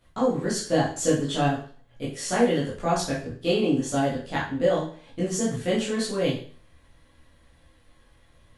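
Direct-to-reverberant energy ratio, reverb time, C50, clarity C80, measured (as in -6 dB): -8.0 dB, 0.45 s, 5.0 dB, 9.5 dB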